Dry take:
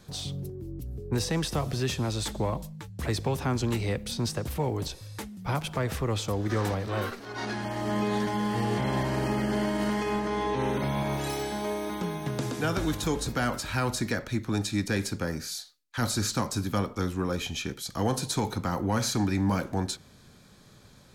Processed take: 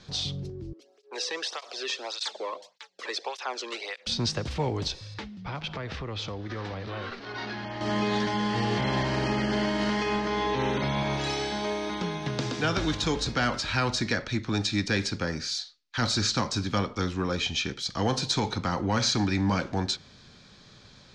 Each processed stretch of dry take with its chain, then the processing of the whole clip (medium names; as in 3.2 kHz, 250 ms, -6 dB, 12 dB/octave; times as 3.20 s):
0.73–4.07 s: high-pass 440 Hz 24 dB/octave + cancelling through-zero flanger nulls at 1.7 Hz, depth 1.5 ms
5.14–7.81 s: low-pass 4.3 kHz + compression 3:1, threshold -34 dBFS
whole clip: low-pass 5.4 kHz 24 dB/octave; treble shelf 2.1 kHz +9.5 dB